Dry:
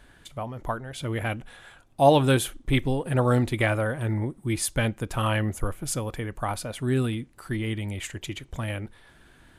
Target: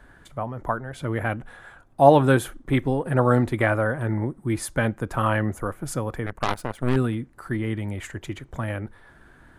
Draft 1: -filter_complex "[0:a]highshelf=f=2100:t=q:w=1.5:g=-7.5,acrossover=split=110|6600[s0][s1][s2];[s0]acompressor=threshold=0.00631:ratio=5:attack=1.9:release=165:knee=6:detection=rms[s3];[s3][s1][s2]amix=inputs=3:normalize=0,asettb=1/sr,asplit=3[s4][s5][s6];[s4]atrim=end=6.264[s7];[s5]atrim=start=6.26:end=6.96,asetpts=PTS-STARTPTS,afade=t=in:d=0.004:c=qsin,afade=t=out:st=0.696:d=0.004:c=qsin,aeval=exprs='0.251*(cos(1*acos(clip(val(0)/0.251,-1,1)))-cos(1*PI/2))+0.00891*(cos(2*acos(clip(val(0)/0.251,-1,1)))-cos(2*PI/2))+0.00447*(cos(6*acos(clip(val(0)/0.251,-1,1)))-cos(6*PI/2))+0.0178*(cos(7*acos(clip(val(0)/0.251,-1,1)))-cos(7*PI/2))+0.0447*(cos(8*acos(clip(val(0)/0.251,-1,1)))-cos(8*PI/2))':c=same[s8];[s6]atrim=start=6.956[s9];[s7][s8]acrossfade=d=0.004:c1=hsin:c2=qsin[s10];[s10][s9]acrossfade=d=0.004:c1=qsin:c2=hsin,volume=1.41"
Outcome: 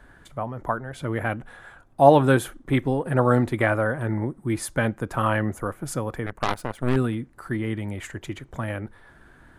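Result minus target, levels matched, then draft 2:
compression: peak gain reduction +5 dB
-filter_complex "[0:a]highshelf=f=2100:t=q:w=1.5:g=-7.5,acrossover=split=110|6600[s0][s1][s2];[s0]acompressor=threshold=0.0133:ratio=5:attack=1.9:release=165:knee=6:detection=rms[s3];[s3][s1][s2]amix=inputs=3:normalize=0,asettb=1/sr,asplit=3[s4][s5][s6];[s4]atrim=end=6.264[s7];[s5]atrim=start=6.26:end=6.96,asetpts=PTS-STARTPTS,afade=t=in:d=0.004:c=qsin,afade=t=out:st=0.696:d=0.004:c=qsin,aeval=exprs='0.251*(cos(1*acos(clip(val(0)/0.251,-1,1)))-cos(1*PI/2))+0.00891*(cos(2*acos(clip(val(0)/0.251,-1,1)))-cos(2*PI/2))+0.00447*(cos(6*acos(clip(val(0)/0.251,-1,1)))-cos(6*PI/2))+0.0178*(cos(7*acos(clip(val(0)/0.251,-1,1)))-cos(7*PI/2))+0.0447*(cos(8*acos(clip(val(0)/0.251,-1,1)))-cos(8*PI/2))':c=same[s8];[s6]atrim=start=6.956[s9];[s7][s8]acrossfade=d=0.004:c1=hsin:c2=qsin[s10];[s10][s9]acrossfade=d=0.004:c1=qsin:c2=hsin,volume=1.41"

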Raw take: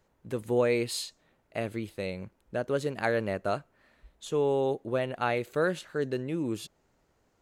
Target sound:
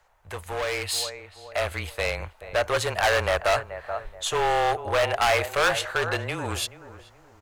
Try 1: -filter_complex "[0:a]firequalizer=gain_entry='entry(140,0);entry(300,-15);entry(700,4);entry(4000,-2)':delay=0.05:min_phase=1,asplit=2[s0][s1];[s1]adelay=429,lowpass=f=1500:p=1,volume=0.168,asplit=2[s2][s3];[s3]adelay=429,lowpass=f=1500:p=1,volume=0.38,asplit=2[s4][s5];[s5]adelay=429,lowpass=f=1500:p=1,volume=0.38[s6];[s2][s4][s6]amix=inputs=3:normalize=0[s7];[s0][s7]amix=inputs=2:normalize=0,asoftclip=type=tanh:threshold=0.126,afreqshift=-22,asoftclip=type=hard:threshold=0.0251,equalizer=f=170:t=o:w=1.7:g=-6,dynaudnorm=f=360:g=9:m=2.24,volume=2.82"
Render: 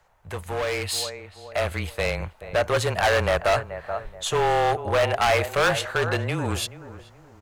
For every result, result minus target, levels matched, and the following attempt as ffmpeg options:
saturation: distortion +14 dB; 125 Hz band +4.5 dB
-filter_complex "[0:a]firequalizer=gain_entry='entry(140,0);entry(300,-15);entry(700,4);entry(4000,-2)':delay=0.05:min_phase=1,asplit=2[s0][s1];[s1]adelay=429,lowpass=f=1500:p=1,volume=0.168,asplit=2[s2][s3];[s3]adelay=429,lowpass=f=1500:p=1,volume=0.38,asplit=2[s4][s5];[s5]adelay=429,lowpass=f=1500:p=1,volume=0.38[s6];[s2][s4][s6]amix=inputs=3:normalize=0[s7];[s0][s7]amix=inputs=2:normalize=0,asoftclip=type=tanh:threshold=0.355,afreqshift=-22,asoftclip=type=hard:threshold=0.0251,equalizer=f=170:t=o:w=1.7:g=-6,dynaudnorm=f=360:g=9:m=2.24,volume=2.82"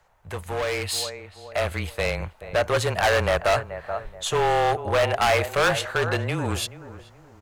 125 Hz band +4.5 dB
-filter_complex "[0:a]firequalizer=gain_entry='entry(140,0);entry(300,-15);entry(700,4);entry(4000,-2)':delay=0.05:min_phase=1,asplit=2[s0][s1];[s1]adelay=429,lowpass=f=1500:p=1,volume=0.168,asplit=2[s2][s3];[s3]adelay=429,lowpass=f=1500:p=1,volume=0.38,asplit=2[s4][s5];[s5]adelay=429,lowpass=f=1500:p=1,volume=0.38[s6];[s2][s4][s6]amix=inputs=3:normalize=0[s7];[s0][s7]amix=inputs=2:normalize=0,asoftclip=type=tanh:threshold=0.355,afreqshift=-22,asoftclip=type=hard:threshold=0.0251,equalizer=f=170:t=o:w=1.7:g=-16,dynaudnorm=f=360:g=9:m=2.24,volume=2.82"

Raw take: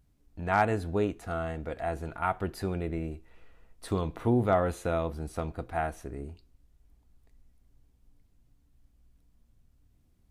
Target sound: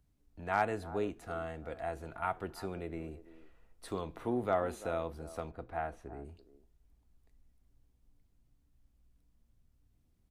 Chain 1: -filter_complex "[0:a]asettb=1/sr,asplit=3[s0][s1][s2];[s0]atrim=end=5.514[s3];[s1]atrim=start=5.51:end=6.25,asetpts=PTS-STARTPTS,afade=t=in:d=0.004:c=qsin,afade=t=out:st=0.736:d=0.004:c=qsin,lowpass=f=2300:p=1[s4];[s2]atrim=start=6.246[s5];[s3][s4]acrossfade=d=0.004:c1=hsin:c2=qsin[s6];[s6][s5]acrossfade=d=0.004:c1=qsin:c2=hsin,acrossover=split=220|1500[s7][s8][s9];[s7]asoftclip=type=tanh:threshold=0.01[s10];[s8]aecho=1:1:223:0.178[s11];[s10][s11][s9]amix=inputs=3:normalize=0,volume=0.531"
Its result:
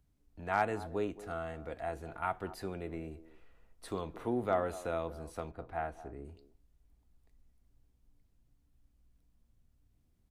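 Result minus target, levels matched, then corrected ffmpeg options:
echo 117 ms early
-filter_complex "[0:a]asettb=1/sr,asplit=3[s0][s1][s2];[s0]atrim=end=5.514[s3];[s1]atrim=start=5.51:end=6.25,asetpts=PTS-STARTPTS,afade=t=in:d=0.004:c=qsin,afade=t=out:st=0.736:d=0.004:c=qsin,lowpass=f=2300:p=1[s4];[s2]atrim=start=6.246[s5];[s3][s4]acrossfade=d=0.004:c1=hsin:c2=qsin[s6];[s6][s5]acrossfade=d=0.004:c1=qsin:c2=hsin,acrossover=split=220|1500[s7][s8][s9];[s7]asoftclip=type=tanh:threshold=0.01[s10];[s8]aecho=1:1:340:0.178[s11];[s10][s11][s9]amix=inputs=3:normalize=0,volume=0.531"

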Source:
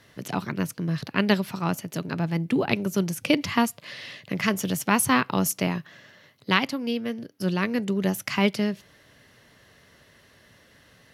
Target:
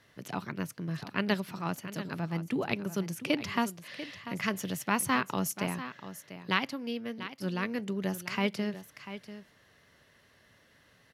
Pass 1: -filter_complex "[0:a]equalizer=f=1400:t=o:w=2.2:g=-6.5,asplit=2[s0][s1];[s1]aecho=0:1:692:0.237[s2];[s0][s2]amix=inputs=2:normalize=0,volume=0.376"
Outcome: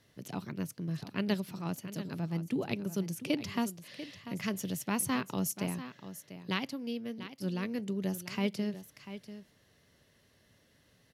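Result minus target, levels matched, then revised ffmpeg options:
1 kHz band -5.0 dB
-filter_complex "[0:a]equalizer=f=1400:t=o:w=2.2:g=2.5,asplit=2[s0][s1];[s1]aecho=0:1:692:0.237[s2];[s0][s2]amix=inputs=2:normalize=0,volume=0.376"

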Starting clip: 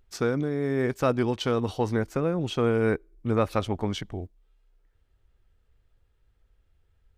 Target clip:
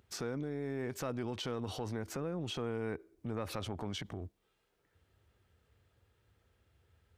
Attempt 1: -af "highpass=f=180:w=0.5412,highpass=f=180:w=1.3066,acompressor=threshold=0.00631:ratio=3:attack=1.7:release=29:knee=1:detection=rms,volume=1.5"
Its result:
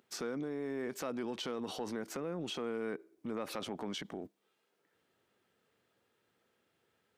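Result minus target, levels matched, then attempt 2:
125 Hz band -9.5 dB
-af "highpass=f=77:w=0.5412,highpass=f=77:w=1.3066,acompressor=threshold=0.00631:ratio=3:attack=1.7:release=29:knee=1:detection=rms,volume=1.5"

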